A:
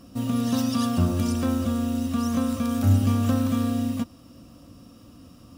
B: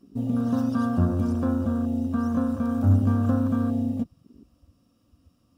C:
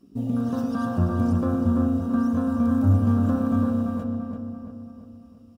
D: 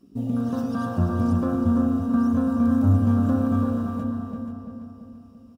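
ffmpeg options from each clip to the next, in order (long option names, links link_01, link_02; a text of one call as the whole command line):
ffmpeg -i in.wav -af "afwtdn=0.0251" out.wav
ffmpeg -i in.wav -filter_complex "[0:a]asplit=2[link_01][link_02];[link_02]adelay=338,lowpass=frequency=2200:poles=1,volume=-3dB,asplit=2[link_03][link_04];[link_04]adelay=338,lowpass=frequency=2200:poles=1,volume=0.53,asplit=2[link_05][link_06];[link_06]adelay=338,lowpass=frequency=2200:poles=1,volume=0.53,asplit=2[link_07][link_08];[link_08]adelay=338,lowpass=frequency=2200:poles=1,volume=0.53,asplit=2[link_09][link_10];[link_10]adelay=338,lowpass=frequency=2200:poles=1,volume=0.53,asplit=2[link_11][link_12];[link_12]adelay=338,lowpass=frequency=2200:poles=1,volume=0.53,asplit=2[link_13][link_14];[link_14]adelay=338,lowpass=frequency=2200:poles=1,volume=0.53[link_15];[link_01][link_03][link_05][link_07][link_09][link_11][link_13][link_15]amix=inputs=8:normalize=0" out.wav
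ffmpeg -i in.wav -af "aecho=1:1:482:0.299" out.wav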